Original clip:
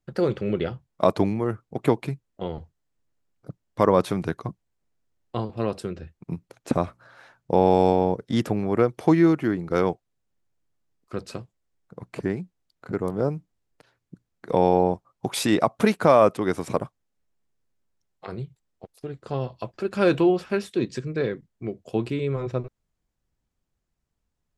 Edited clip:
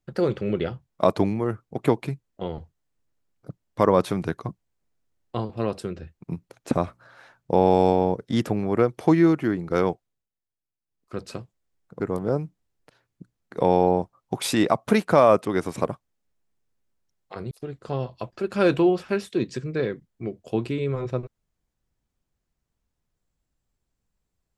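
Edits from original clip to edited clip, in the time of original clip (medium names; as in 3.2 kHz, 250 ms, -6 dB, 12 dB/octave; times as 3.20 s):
9.85–11.32 s: dip -16 dB, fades 0.45 s equal-power
12.00–12.92 s: delete
18.43–18.92 s: delete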